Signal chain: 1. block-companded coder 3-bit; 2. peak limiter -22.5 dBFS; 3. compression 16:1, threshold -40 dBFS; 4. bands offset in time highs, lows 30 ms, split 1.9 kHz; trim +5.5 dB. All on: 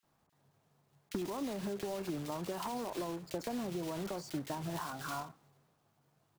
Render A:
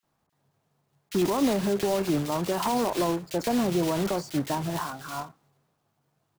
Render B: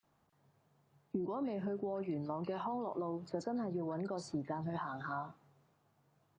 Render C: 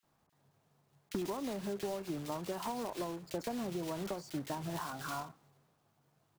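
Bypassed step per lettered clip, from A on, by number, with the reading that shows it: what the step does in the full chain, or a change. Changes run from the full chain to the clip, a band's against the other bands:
3, mean gain reduction 11.0 dB; 1, distortion -11 dB; 2, mean gain reduction 2.0 dB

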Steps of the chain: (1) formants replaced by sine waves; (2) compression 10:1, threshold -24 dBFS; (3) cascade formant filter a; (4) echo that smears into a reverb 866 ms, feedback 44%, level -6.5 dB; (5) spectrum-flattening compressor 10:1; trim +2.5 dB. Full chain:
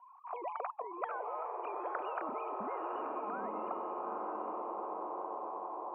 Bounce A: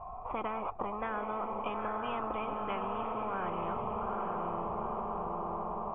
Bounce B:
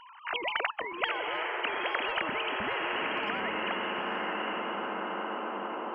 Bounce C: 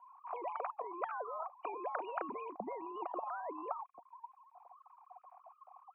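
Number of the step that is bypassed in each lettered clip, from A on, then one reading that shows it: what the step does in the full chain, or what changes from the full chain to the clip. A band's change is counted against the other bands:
1, 250 Hz band +3.5 dB; 3, 2 kHz band +15.5 dB; 4, momentary loudness spread change +16 LU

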